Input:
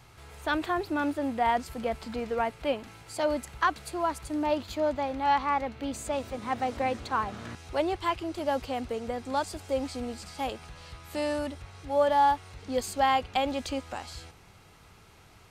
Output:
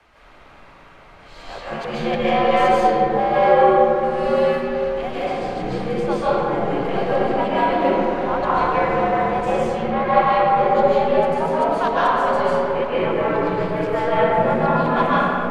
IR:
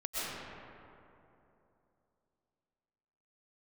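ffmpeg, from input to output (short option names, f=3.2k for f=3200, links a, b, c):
-filter_complex "[0:a]areverse,highshelf=f=4.1k:g=-11.5,bandreject=f=50:t=h:w=6,bandreject=f=100:t=h:w=6,bandreject=f=150:t=h:w=6,bandreject=f=200:t=h:w=6,bandreject=f=250:t=h:w=6,bandreject=f=300:t=h:w=6,bandreject=f=350:t=h:w=6,bandreject=f=400:t=h:w=6,acrossover=split=240|810|4200[a][b][c][d];[c]acontrast=83[e];[d]acrusher=bits=5:mode=log:mix=0:aa=0.000001[f];[a][b][e][f]amix=inputs=4:normalize=0,asplit=2[g][h];[h]asetrate=33038,aresample=44100,atempo=1.33484,volume=-3dB[i];[g][i]amix=inputs=2:normalize=0,afreqshift=-53,aeval=exprs='0.531*sin(PI/2*1.41*val(0)/0.531)':c=same[j];[1:a]atrim=start_sample=2205,asetrate=38367,aresample=44100[k];[j][k]afir=irnorm=-1:irlink=0,volume=-7dB"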